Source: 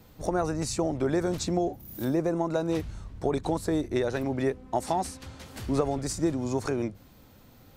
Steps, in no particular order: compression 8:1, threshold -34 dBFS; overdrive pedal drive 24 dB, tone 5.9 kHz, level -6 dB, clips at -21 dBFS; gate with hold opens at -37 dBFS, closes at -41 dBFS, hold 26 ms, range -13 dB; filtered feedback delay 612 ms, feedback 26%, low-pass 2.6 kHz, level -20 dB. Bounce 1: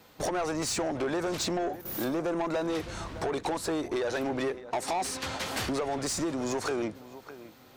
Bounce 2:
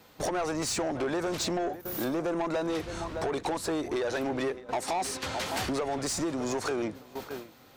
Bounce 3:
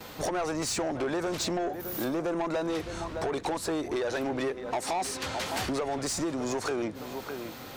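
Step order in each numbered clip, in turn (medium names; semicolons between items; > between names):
compression > gate with hold > filtered feedback delay > overdrive pedal; filtered feedback delay > compression > gate with hold > overdrive pedal; filtered feedback delay > compression > overdrive pedal > gate with hold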